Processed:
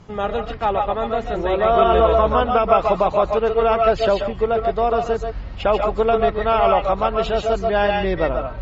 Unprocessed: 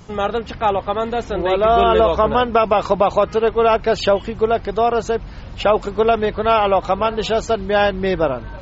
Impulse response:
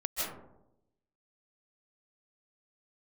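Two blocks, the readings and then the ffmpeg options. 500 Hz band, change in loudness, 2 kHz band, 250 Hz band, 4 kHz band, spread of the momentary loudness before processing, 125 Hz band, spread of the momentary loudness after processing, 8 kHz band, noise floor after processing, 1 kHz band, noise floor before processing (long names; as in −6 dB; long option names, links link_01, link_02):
−1.0 dB, −1.0 dB, −2.5 dB, −2.5 dB, −4.0 dB, 7 LU, 0.0 dB, 7 LU, can't be measured, −31 dBFS, −1.0 dB, −34 dBFS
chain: -filter_complex "[0:a]aemphasis=mode=reproduction:type=50fm[link_01];[1:a]atrim=start_sample=2205,atrim=end_sample=6615[link_02];[link_01][link_02]afir=irnorm=-1:irlink=0,volume=-2dB"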